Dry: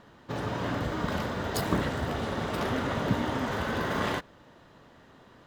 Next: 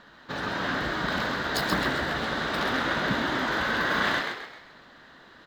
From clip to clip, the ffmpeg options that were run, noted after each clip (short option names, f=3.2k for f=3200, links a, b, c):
-filter_complex "[0:a]equalizer=f=100:t=o:w=0.67:g=-12,equalizer=f=400:t=o:w=0.67:g=-3,equalizer=f=1.6k:t=o:w=0.67:g=9,equalizer=f=4k:t=o:w=0.67:g=9,equalizer=f=10k:t=o:w=0.67:g=-4,asplit=2[a][b];[b]asplit=5[c][d][e][f][g];[c]adelay=131,afreqshift=72,volume=-5dB[h];[d]adelay=262,afreqshift=144,volume=-12.7dB[i];[e]adelay=393,afreqshift=216,volume=-20.5dB[j];[f]adelay=524,afreqshift=288,volume=-28.2dB[k];[g]adelay=655,afreqshift=360,volume=-36dB[l];[h][i][j][k][l]amix=inputs=5:normalize=0[m];[a][m]amix=inputs=2:normalize=0"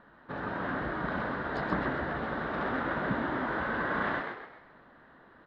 -af "lowpass=1.5k,volume=-3dB"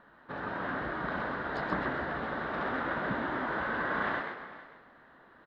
-af "lowshelf=f=380:g=-4.5,aecho=1:1:448:0.133"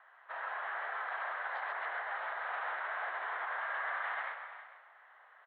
-af "alimiter=level_in=2.5dB:limit=-24dB:level=0:latency=1:release=53,volume=-2.5dB,highpass=f=570:t=q:w=0.5412,highpass=f=570:t=q:w=1.307,lowpass=f=3.3k:t=q:w=0.5176,lowpass=f=3.3k:t=q:w=0.7071,lowpass=f=3.3k:t=q:w=1.932,afreqshift=100,volume=-1dB"